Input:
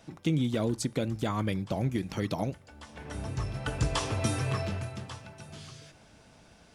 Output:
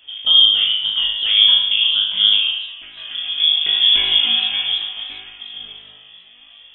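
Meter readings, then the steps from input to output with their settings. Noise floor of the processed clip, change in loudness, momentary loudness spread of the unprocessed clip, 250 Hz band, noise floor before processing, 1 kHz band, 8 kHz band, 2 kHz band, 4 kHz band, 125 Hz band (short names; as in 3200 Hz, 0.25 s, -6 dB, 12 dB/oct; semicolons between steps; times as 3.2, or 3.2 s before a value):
-46 dBFS, +19.0 dB, 17 LU, under -15 dB, -58 dBFS, -2.0 dB, under -40 dB, +14.0 dB, +32.5 dB, under -20 dB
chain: tilt shelf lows +5 dB, about 730 Hz; flutter echo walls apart 3.3 m, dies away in 0.95 s; inverted band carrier 3400 Hz; flange 0.75 Hz, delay 1.7 ms, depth 5.5 ms, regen +61%; warbling echo 0.297 s, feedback 31%, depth 119 cents, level -24 dB; gain +7.5 dB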